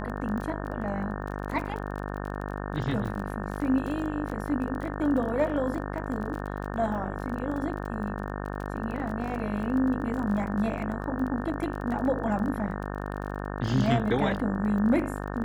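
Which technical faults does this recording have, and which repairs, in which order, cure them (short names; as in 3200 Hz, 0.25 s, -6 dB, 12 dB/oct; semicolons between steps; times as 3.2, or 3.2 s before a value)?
buzz 50 Hz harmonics 36 -34 dBFS
crackle 25/s -34 dBFS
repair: de-click; de-hum 50 Hz, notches 36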